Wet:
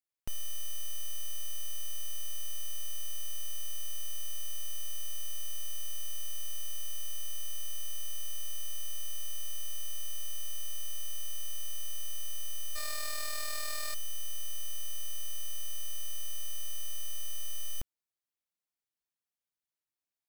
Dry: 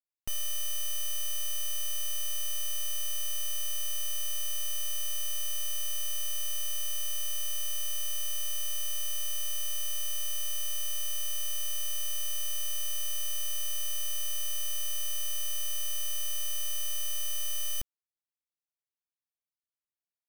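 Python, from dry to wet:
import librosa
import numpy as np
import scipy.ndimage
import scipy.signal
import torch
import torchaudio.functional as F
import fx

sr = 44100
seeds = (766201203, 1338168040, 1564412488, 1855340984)

y = fx.spec_flatten(x, sr, power=0.47, at=(12.75, 13.93), fade=0.02)
y = fx.slew_limit(y, sr, full_power_hz=220.0)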